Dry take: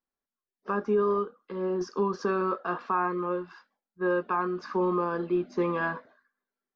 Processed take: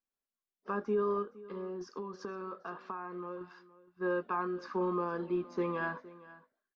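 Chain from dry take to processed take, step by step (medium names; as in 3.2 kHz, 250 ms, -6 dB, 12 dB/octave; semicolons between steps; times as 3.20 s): 1.22–3.41 s: compression, threshold -32 dBFS, peak gain reduction 10 dB; delay 466 ms -19 dB; trim -6 dB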